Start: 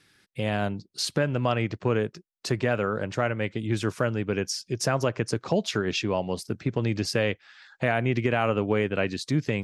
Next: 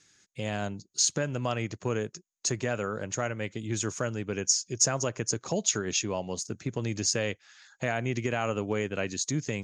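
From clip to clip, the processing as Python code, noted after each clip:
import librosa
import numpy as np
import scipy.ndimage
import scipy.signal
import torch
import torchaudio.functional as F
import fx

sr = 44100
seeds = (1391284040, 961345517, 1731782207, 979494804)

y = fx.lowpass_res(x, sr, hz=6700.0, q=14.0)
y = y * 10.0 ** (-5.5 / 20.0)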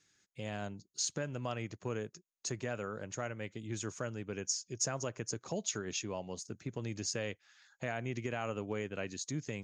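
y = fx.high_shelf(x, sr, hz=7000.0, db=-5.0)
y = y * 10.0 ** (-8.0 / 20.0)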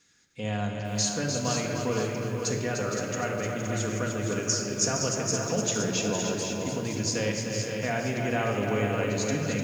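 y = fx.echo_multitap(x, sr, ms=(300, 517), db=(-6.5, -7.0))
y = fx.room_shoebox(y, sr, seeds[0], volume_m3=2200.0, walls='mixed', distance_m=1.8)
y = fx.echo_crushed(y, sr, ms=464, feedback_pct=35, bits=9, wet_db=-8)
y = y * 10.0 ** (6.0 / 20.0)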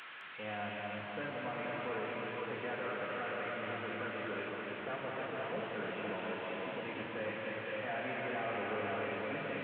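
y = fx.delta_mod(x, sr, bps=16000, step_db=-40.0)
y = fx.highpass(y, sr, hz=1300.0, slope=6)
y = y + 10.0 ** (-6.0 / 20.0) * np.pad(y, (int(211 * sr / 1000.0), 0))[:len(y)]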